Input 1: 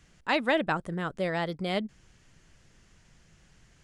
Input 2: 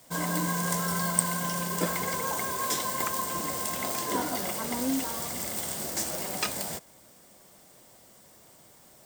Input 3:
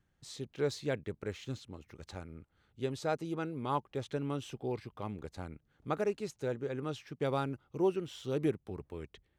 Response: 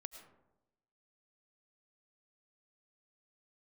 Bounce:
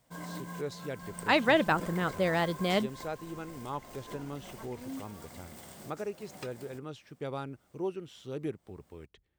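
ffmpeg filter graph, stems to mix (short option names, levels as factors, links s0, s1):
-filter_complex "[0:a]adelay=1000,volume=1.19[s0];[1:a]bass=f=250:g=3,treble=f=4000:g=-7,volume=0.251[s1];[2:a]volume=0.596,asplit=2[s2][s3];[s3]apad=whole_len=399294[s4];[s1][s4]sidechaincompress=threshold=0.00631:ratio=8:attack=26:release=246[s5];[s0][s5][s2]amix=inputs=3:normalize=0"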